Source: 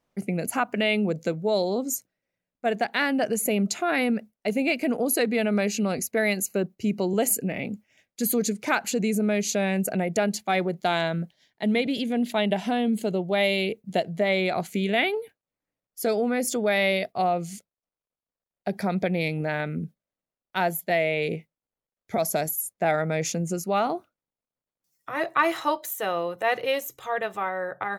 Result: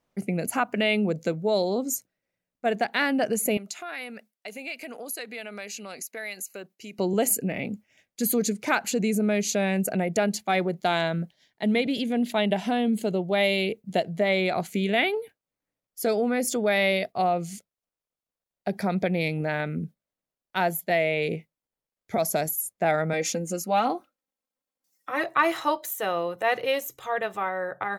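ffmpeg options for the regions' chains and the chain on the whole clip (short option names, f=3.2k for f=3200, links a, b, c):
-filter_complex "[0:a]asettb=1/sr,asplit=3[a][b][c];[a]atrim=end=3.574[d];[b]atrim=start=3.57:end=6.99,asetpts=PTS-STARTPTS,afade=t=in:d=0.004:c=qsin,afade=t=out:st=3.416:d=0.004:c=qsin,highpass=f=1.4k:p=1,acompressor=threshold=-36dB:ratio=2:attack=3.2:release=140:knee=1:detection=peak[e];[c]atrim=start=6.986[f];[d][e]acrossfade=d=0.004:c1=hsin:c2=qsin[g];[g][f]acrossfade=d=0.004:c1=qsin:c2=hsin,asettb=1/sr,asplit=3[h][i][j];[h]atrim=end=23.134[k];[i]atrim=start=23.13:end=25.24,asetpts=PTS-STARTPTS,afade=t=in:d=0.004:c=qsin,afade=t=out:st=2.106:d=0.004:c=qsin,lowshelf=f=120:g=-11,aecho=1:1:3.8:0.66,atrim=end_sample=93051[l];[j]atrim=start=25.236[m];[k][l]acrossfade=d=0.004:c1=hsin:c2=qsin[n];[n][m]acrossfade=d=0.004:c1=qsin:c2=hsin"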